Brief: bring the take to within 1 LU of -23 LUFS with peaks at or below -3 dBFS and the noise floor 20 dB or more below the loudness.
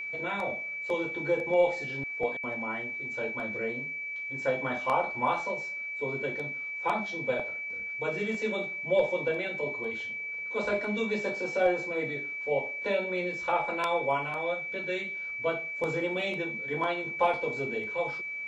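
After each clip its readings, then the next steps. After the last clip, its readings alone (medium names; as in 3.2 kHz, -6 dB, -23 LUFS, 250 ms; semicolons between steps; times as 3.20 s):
steady tone 2.3 kHz; tone level -34 dBFS; loudness -30.5 LUFS; peak level -13.0 dBFS; loudness target -23.0 LUFS
-> band-stop 2.3 kHz, Q 30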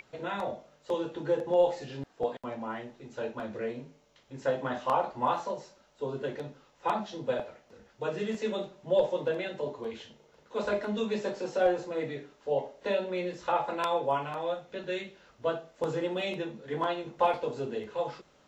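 steady tone not found; loudness -32.5 LUFS; peak level -14.0 dBFS; loudness target -23.0 LUFS
-> trim +9.5 dB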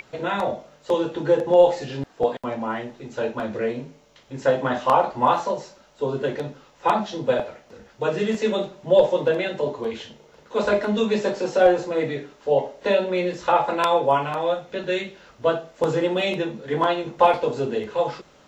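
loudness -23.0 LUFS; peak level -4.5 dBFS; noise floor -54 dBFS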